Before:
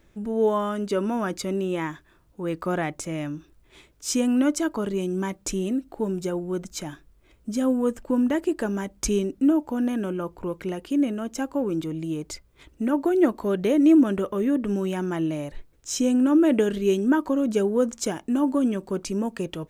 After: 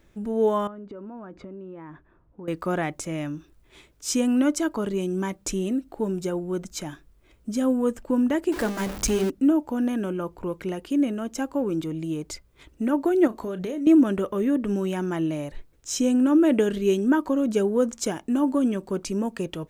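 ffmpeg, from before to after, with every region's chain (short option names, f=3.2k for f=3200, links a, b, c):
-filter_complex "[0:a]asettb=1/sr,asplit=3[a][b][c];[a]atrim=end=0.674[d];[b]atrim=start=0.67:end=2.48,asetpts=PTS-STARTPTS,afade=t=in:d=0.004:c=qsin,afade=t=out:st=1.806:d=0.004:c=qsin,lowpass=1.3k,acompressor=threshold=-36dB:ratio=10:attack=3.2:release=140:knee=1:detection=peak[e];[c]atrim=start=2.476[f];[d][e]acrossfade=d=0.004:c1=hsin:c2=qsin[g];[g][f]acrossfade=d=0.004:c1=qsin:c2=hsin,asettb=1/sr,asplit=3[h][i][j];[h]atrim=end=8.524[k];[i]atrim=start=8.52:end=9.3,asetpts=PTS-STARTPTS,afade=t=in:d=0.004:c=qsin,afade=t=out:st=0.776:d=0.004:c=qsin,aeval=exprs='val(0)+0.5*0.0422*sgn(val(0))':c=same,bandreject=f=50:t=h:w=6,bandreject=f=100:t=h:w=6,bandreject=f=150:t=h:w=6,bandreject=f=200:t=h:w=6,bandreject=f=250:t=h:w=6,bandreject=f=300:t=h:w=6,bandreject=f=350:t=h:w=6,bandreject=f=400:t=h:w=6,bandreject=f=450:t=h:w=6,acrusher=bits=9:mode=log:mix=0:aa=0.000001[l];[j]atrim=start=9.296[m];[k][l]acrossfade=d=0.004:c1=hsin:c2=qsin[n];[n][m]acrossfade=d=0.004:c1=qsin:c2=hsin,asettb=1/sr,asplit=3[o][p][q];[o]atrim=end=13.274[r];[p]atrim=start=13.27:end=13.87,asetpts=PTS-STARTPTS,afade=t=in:d=0.004:c=qsin,afade=t=out:st=0.596:d=0.004:c=qsin,equalizer=f=6.7k:w=7.9:g=5,acompressor=threshold=-27dB:ratio=10:attack=3.2:release=140:knee=1:detection=peak,asplit=2[s][t];[t]adelay=32,volume=-12dB[u];[s][u]amix=inputs=2:normalize=0,atrim=end_sample=26460[v];[q]atrim=start=13.866[w];[r][v]acrossfade=d=0.004:c1=hsin:c2=qsin[x];[x][w]acrossfade=d=0.004:c1=qsin:c2=hsin"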